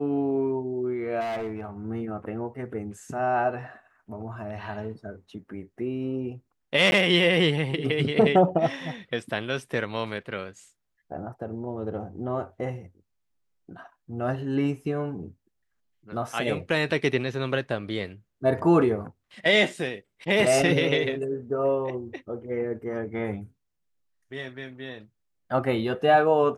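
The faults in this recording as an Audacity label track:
1.200000	1.650000	clipping −27.5 dBFS
6.910000	6.920000	drop-out 11 ms

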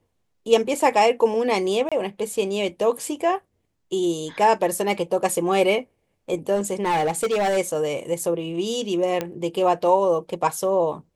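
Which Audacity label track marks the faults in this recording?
1.890000	1.920000	drop-out 26 ms
6.550000	7.580000	clipping −18 dBFS
9.210000	9.210000	click −11 dBFS

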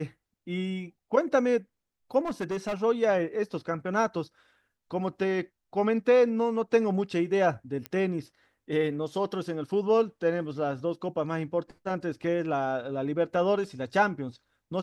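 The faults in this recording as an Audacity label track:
2.210000	2.750000	clipping −27 dBFS
7.860000	7.860000	click −19 dBFS

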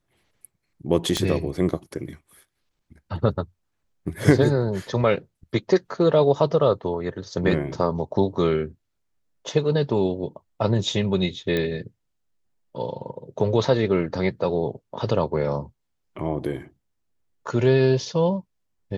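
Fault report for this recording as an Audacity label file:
1.170000	1.170000	click −10 dBFS
11.570000	11.570000	click −13 dBFS

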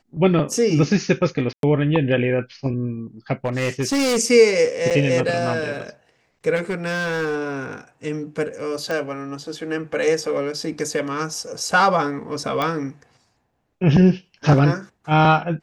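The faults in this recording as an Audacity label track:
1.530000	1.630000	drop-out 102 ms
3.450000	4.180000	clipping −16.5 dBFS
4.900000	4.910000	drop-out 7.1 ms
6.550000	7.440000	clipping −19 dBFS
8.910000	8.910000	click −13 dBFS
12.620000	12.620000	click −10 dBFS

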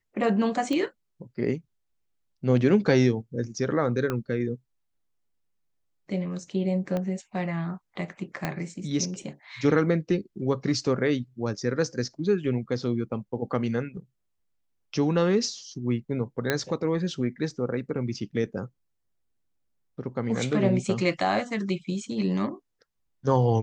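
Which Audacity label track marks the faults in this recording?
0.730000	0.730000	click −17 dBFS
4.100000	4.100000	click −15 dBFS
6.970000	6.970000	click −18 dBFS
8.450000	8.450000	click −13 dBFS
16.500000	16.500000	click −9 dBFS

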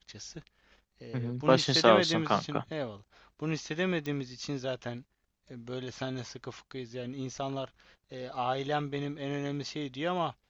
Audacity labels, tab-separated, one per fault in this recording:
4.060000	4.060000	click −23 dBFS

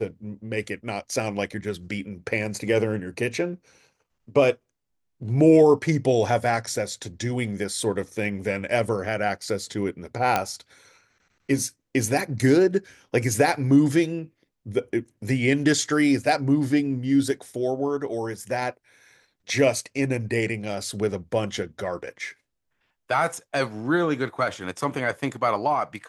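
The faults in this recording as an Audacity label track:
10.360000	10.360000	click −7 dBFS

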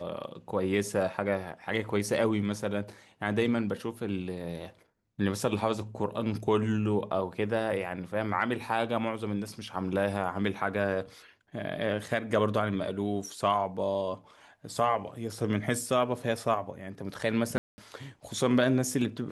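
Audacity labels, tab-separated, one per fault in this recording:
17.580000	17.780000	drop-out 200 ms

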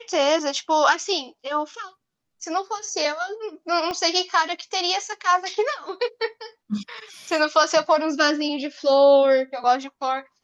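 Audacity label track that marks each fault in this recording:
3.910000	3.910000	click −15 dBFS

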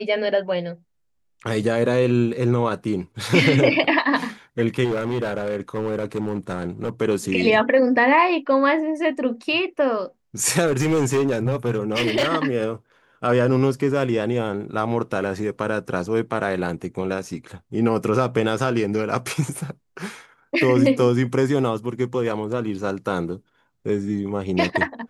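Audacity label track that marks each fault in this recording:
4.840000	6.900000	clipping −19.5 dBFS
10.660000	12.320000	clipping −15.5 dBFS

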